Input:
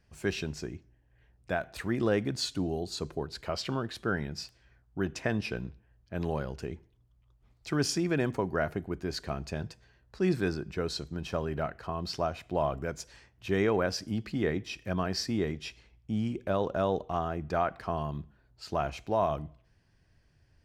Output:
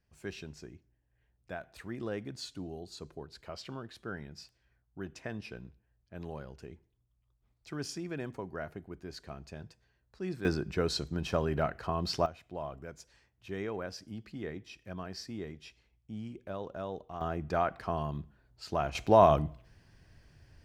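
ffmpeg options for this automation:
ffmpeg -i in.wav -af "asetnsamples=nb_out_samples=441:pad=0,asendcmd='10.45 volume volume 2dB;12.26 volume volume -10.5dB;17.21 volume volume -1dB;18.95 volume volume 7dB',volume=-10dB" out.wav

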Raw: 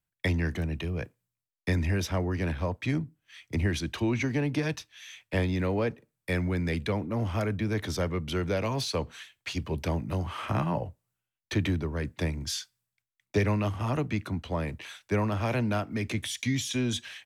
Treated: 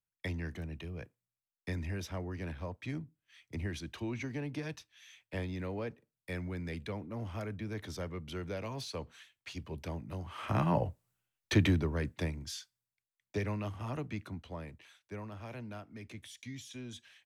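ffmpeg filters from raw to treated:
ffmpeg -i in.wav -af "volume=1.5dB,afade=type=in:start_time=10.3:duration=0.53:silence=0.251189,afade=type=out:start_time=11.53:duration=0.94:silence=0.281838,afade=type=out:start_time=14.2:duration=0.71:silence=0.446684" out.wav

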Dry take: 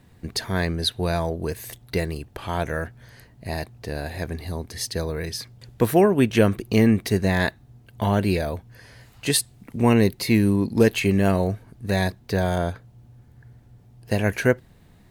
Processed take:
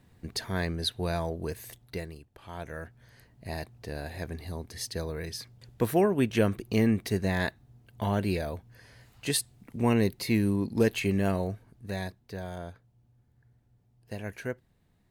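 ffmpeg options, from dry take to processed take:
ffmpeg -i in.wav -af "volume=5dB,afade=type=out:start_time=1.53:duration=0.76:silence=0.251189,afade=type=in:start_time=2.29:duration=1.19:silence=0.266073,afade=type=out:start_time=11.17:duration=1.15:silence=0.375837" out.wav

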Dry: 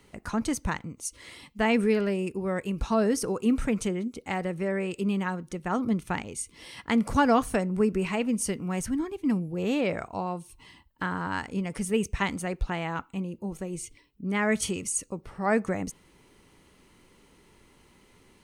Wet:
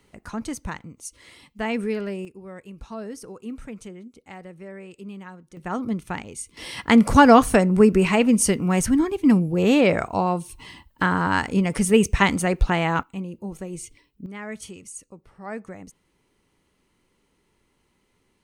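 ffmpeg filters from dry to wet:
ffmpeg -i in.wav -af "asetnsamples=nb_out_samples=441:pad=0,asendcmd='2.25 volume volume -10.5dB;5.57 volume volume 0dB;6.57 volume volume 9.5dB;13.03 volume volume 1dB;14.26 volume volume -9.5dB',volume=-2.5dB" out.wav

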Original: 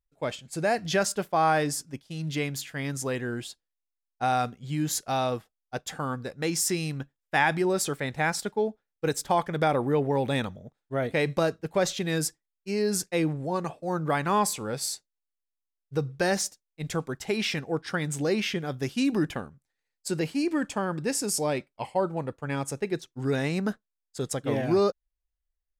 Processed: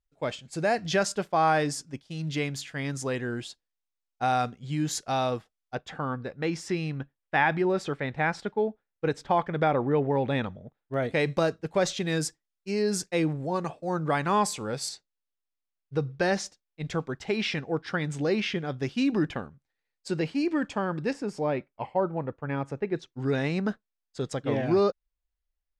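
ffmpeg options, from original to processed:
ffmpeg -i in.wav -af "asetnsamples=nb_out_samples=441:pad=0,asendcmd='5.75 lowpass f 3000;10.94 lowpass f 7800;14.89 lowpass f 4600;21.13 lowpass f 2100;22.96 lowpass f 4700',lowpass=7400" out.wav

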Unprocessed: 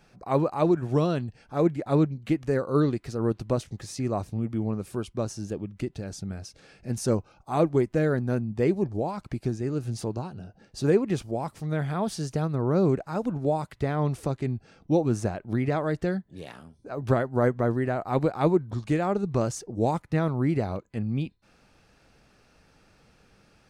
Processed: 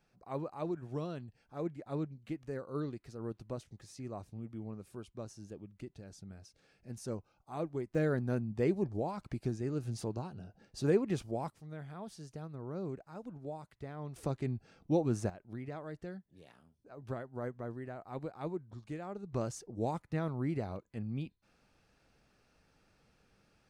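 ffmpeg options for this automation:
ffmpeg -i in.wav -af "asetnsamples=nb_out_samples=441:pad=0,asendcmd='7.95 volume volume -7dB;11.5 volume volume -17.5dB;14.16 volume volume -7dB;15.3 volume volume -17dB;19.33 volume volume -10dB',volume=-15dB" out.wav

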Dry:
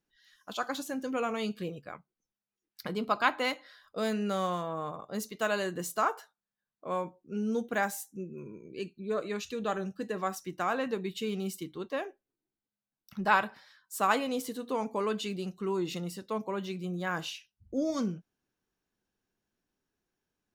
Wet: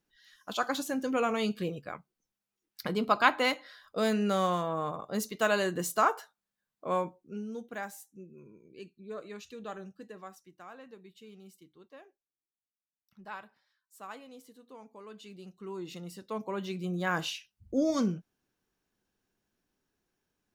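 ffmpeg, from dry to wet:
ffmpeg -i in.wav -af "volume=24dB,afade=type=out:start_time=6.97:duration=0.51:silence=0.251189,afade=type=out:start_time=9.79:duration=0.72:silence=0.354813,afade=type=in:start_time=15.04:duration=0.99:silence=0.266073,afade=type=in:start_time=16.03:duration=1.11:silence=0.334965" out.wav

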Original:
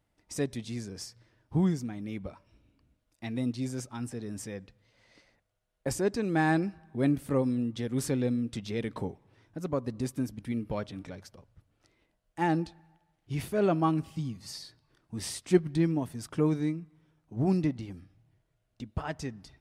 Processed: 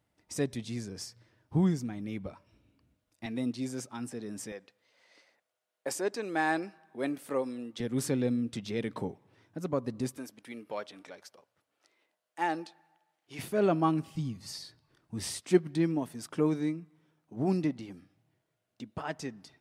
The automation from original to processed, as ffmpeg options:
ffmpeg -i in.wav -af "asetnsamples=nb_out_samples=441:pad=0,asendcmd='3.26 highpass f 180;4.52 highpass f 420;7.8 highpass f 120;10.17 highpass f 480;13.39 highpass f 150;14.15 highpass f 56;15.41 highpass f 190',highpass=74" out.wav

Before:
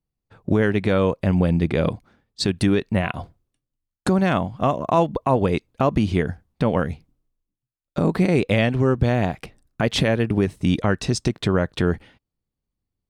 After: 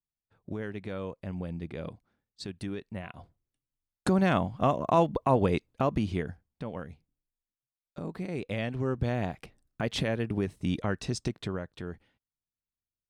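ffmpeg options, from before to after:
ffmpeg -i in.wav -af "volume=2.5dB,afade=type=in:start_time=3.14:duration=1.11:silence=0.237137,afade=type=out:start_time=5.41:duration=1.24:silence=0.237137,afade=type=in:start_time=8.25:duration=0.83:silence=0.421697,afade=type=out:start_time=11.28:duration=0.4:silence=0.375837" out.wav

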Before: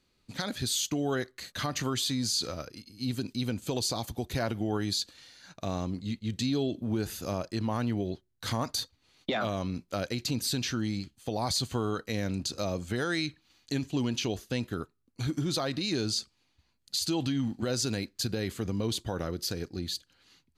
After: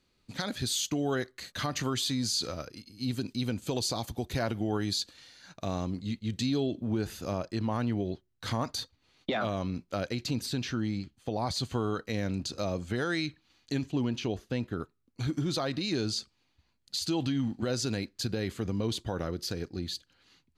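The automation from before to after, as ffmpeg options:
ffmpeg -i in.wav -af "asetnsamples=nb_out_samples=441:pad=0,asendcmd='6.6 lowpass f 4400;10.46 lowpass f 2600;11.57 lowpass f 4700;13.92 lowpass f 2000;14.8 lowpass f 5200',lowpass=frequency=9900:poles=1" out.wav

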